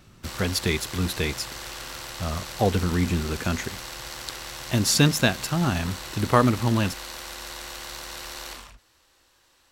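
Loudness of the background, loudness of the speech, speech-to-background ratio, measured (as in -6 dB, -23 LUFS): -36.0 LUFS, -24.5 LUFS, 11.5 dB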